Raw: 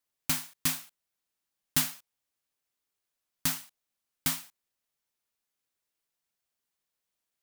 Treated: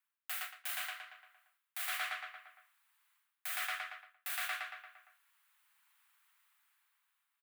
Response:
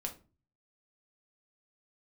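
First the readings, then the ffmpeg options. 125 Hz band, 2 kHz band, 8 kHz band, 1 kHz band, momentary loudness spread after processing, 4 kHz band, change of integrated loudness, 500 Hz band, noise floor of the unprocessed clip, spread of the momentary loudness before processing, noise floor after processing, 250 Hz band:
under -40 dB, +2.5 dB, -12.0 dB, +1.0 dB, 15 LU, -6.5 dB, -8.5 dB, -3.0 dB, under -85 dBFS, 9 LU, under -85 dBFS, under -40 dB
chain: -filter_complex "[0:a]highpass=670,dynaudnorm=f=290:g=7:m=13.5dB,equalizer=f=5.1k:t=o:w=1.1:g=-10.5,asplit=2[a][b];[b]adelay=115,lowpass=f=3.2k:p=1,volume=-6dB,asplit=2[c][d];[d]adelay=115,lowpass=f=3.2k:p=1,volume=0.54,asplit=2[e][f];[f]adelay=115,lowpass=f=3.2k:p=1,volume=0.54,asplit=2[g][h];[h]adelay=115,lowpass=f=3.2k:p=1,volume=0.54,asplit=2[i][j];[j]adelay=115,lowpass=f=3.2k:p=1,volume=0.54,asplit=2[k][l];[l]adelay=115,lowpass=f=3.2k:p=1,volume=0.54,asplit=2[m][n];[n]adelay=115,lowpass=f=3.2k:p=1,volume=0.54[o];[c][e][g][i][k][m][o]amix=inputs=7:normalize=0[p];[a][p]amix=inputs=2:normalize=0,acrusher=bits=7:mode=log:mix=0:aa=0.000001,afreqshift=480,alimiter=limit=-14.5dB:level=0:latency=1,areverse,acompressor=threshold=-40dB:ratio=6,areverse,highshelf=f=2.2k:g=-10,volume=10dB"

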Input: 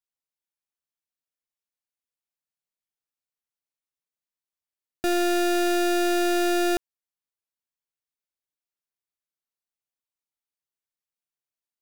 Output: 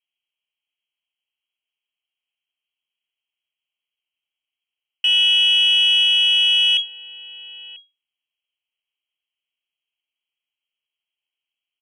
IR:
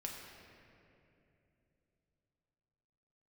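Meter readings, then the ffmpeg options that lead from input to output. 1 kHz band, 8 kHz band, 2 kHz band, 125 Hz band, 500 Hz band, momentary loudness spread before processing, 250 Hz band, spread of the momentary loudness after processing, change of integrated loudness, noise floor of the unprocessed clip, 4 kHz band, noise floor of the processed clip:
under -20 dB, -4.5 dB, +8.0 dB, n/a, under -25 dB, 4 LU, under -40 dB, 7 LU, +10.5 dB, under -85 dBFS, +23.0 dB, under -85 dBFS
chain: -filter_complex "[0:a]alimiter=level_in=9.5dB:limit=-24dB:level=0:latency=1,volume=-9.5dB,lowpass=f=2.8k:t=q:w=0.5098,lowpass=f=2.8k:t=q:w=0.6013,lowpass=f=2.8k:t=q:w=0.9,lowpass=f=2.8k:t=q:w=2.563,afreqshift=-3300,asplit=2[a][b];[b]adelay=991.3,volume=-15dB,highshelf=f=4k:g=-22.3[c];[a][c]amix=inputs=2:normalize=0,aexciter=amount=8:drive=9.1:freq=2.6k"

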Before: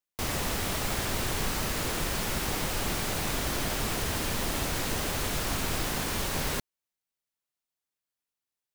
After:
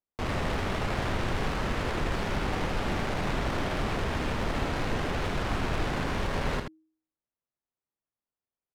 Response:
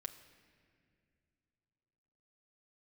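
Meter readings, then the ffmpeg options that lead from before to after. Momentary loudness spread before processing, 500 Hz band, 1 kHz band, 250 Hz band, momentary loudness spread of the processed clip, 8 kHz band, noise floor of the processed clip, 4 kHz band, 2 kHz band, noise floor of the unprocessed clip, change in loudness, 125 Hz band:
0 LU, +2.5 dB, +2.5 dB, +2.5 dB, 1 LU, -14.0 dB, under -85 dBFS, -5.0 dB, +0.5 dB, under -85 dBFS, -1.0 dB, +3.0 dB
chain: -filter_complex "[0:a]bandreject=f=158.4:t=h:w=4,bandreject=f=316.8:t=h:w=4,adynamicsmooth=sensitivity=4:basefreq=1.3k,asplit=2[a][b];[b]aecho=0:1:32|79:0.126|0.447[c];[a][c]amix=inputs=2:normalize=0,volume=2dB"

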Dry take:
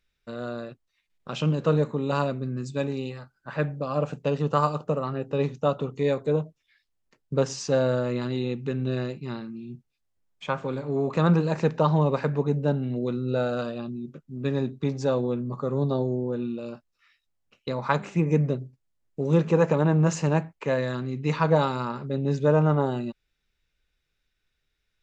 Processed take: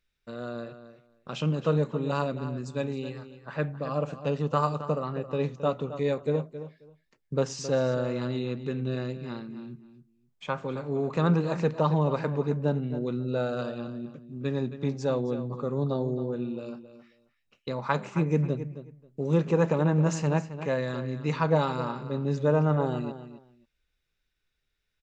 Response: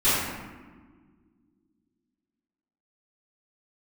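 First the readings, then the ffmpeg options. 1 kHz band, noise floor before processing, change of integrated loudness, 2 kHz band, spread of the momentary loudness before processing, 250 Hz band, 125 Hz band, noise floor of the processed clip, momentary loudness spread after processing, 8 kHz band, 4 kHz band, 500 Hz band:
-3.0 dB, -77 dBFS, -3.0 dB, -3.0 dB, 14 LU, -2.5 dB, -2.5 dB, -77 dBFS, 15 LU, n/a, -3.0 dB, -3.0 dB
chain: -filter_complex "[0:a]asplit=2[a][b];[b]adelay=268,lowpass=f=4.9k:p=1,volume=-12dB,asplit=2[c][d];[d]adelay=268,lowpass=f=4.9k:p=1,volume=0.18[e];[a][c][e]amix=inputs=3:normalize=0,volume=-3dB"

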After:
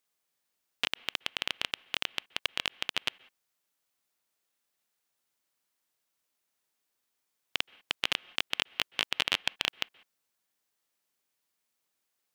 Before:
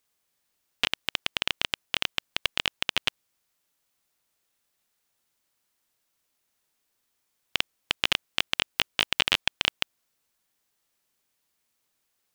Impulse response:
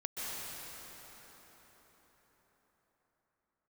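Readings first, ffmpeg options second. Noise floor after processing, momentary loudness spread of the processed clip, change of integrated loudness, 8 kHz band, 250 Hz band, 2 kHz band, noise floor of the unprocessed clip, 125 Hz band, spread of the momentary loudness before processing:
-82 dBFS, 6 LU, -5.0 dB, -5.0 dB, -6.0 dB, -5.0 dB, -77 dBFS, -9.0 dB, 6 LU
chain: -filter_complex "[0:a]lowshelf=f=110:g=-10,asplit=2[a][b];[1:a]atrim=start_sample=2205,afade=t=out:st=0.25:d=0.01,atrim=end_sample=11466,lowpass=3.1k[c];[b][c]afir=irnorm=-1:irlink=0,volume=-19dB[d];[a][d]amix=inputs=2:normalize=0,volume=-5dB"

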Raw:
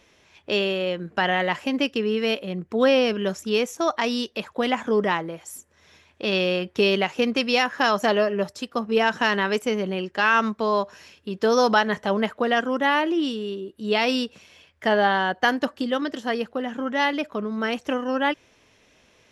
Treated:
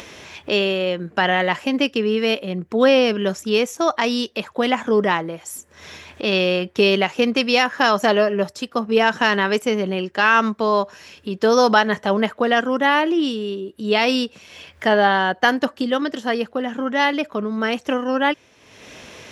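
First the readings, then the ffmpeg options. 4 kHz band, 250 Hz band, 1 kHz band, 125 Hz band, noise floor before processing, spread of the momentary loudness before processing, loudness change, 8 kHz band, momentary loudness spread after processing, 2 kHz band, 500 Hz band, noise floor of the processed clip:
+4.0 dB, +4.0 dB, +4.0 dB, +4.0 dB, -60 dBFS, 9 LU, +4.0 dB, +4.5 dB, 10 LU, +4.0 dB, +4.0 dB, -53 dBFS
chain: -af "highpass=68,acompressor=mode=upward:threshold=-31dB:ratio=2.5,volume=4dB"

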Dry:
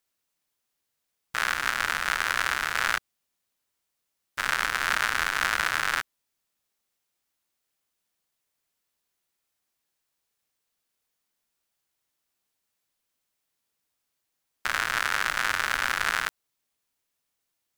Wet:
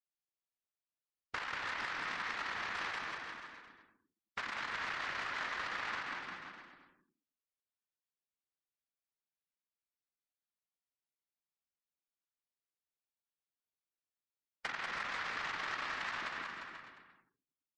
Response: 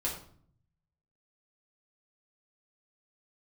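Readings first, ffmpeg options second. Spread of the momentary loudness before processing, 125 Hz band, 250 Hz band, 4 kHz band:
6 LU, -11.5 dB, -7.0 dB, -13.0 dB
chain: -filter_complex "[0:a]adynamicsmooth=sensitivity=0.5:basefreq=5.1k,highshelf=f=5.9k:g=5,asplit=2[a][b];[1:a]atrim=start_sample=2205,adelay=126[c];[b][c]afir=irnorm=-1:irlink=0,volume=-13dB[d];[a][d]amix=inputs=2:normalize=0,afftfilt=real='hypot(re,im)*cos(2*PI*random(0))':imag='hypot(re,im)*sin(2*PI*random(1))':win_size=512:overlap=0.75,acompressor=threshold=-44dB:ratio=12,afftdn=nr=21:nf=-63,aeval=exprs='val(0)*sin(2*PI*270*n/s)':c=same,aecho=1:1:190|351.5|488.8|605.5|704.6:0.631|0.398|0.251|0.158|0.1,volume=9dB"

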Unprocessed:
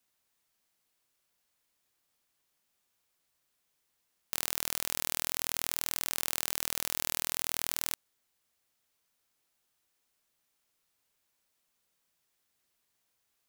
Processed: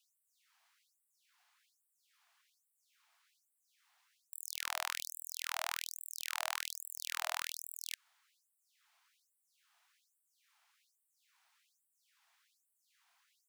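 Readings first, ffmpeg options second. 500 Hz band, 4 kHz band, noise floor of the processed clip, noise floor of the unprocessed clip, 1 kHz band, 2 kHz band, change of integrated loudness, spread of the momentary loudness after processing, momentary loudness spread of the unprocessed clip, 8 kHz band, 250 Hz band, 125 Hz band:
-10.5 dB, -4.5 dB, -82 dBFS, -79 dBFS, 0.0 dB, -1.0 dB, -7.5 dB, 7 LU, 2 LU, -8.5 dB, under -40 dB, under -40 dB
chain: -filter_complex "[0:a]asplit=2[a][b];[b]highpass=f=720:p=1,volume=15dB,asoftclip=type=tanh:threshold=-4dB[c];[a][c]amix=inputs=2:normalize=0,lowpass=f=1.3k:p=1,volume=-6dB,afftfilt=real='re*gte(b*sr/1024,630*pow(7800/630,0.5+0.5*sin(2*PI*1.2*pts/sr)))':imag='im*gte(b*sr/1024,630*pow(7800/630,0.5+0.5*sin(2*PI*1.2*pts/sr)))':win_size=1024:overlap=0.75,volume=6dB"

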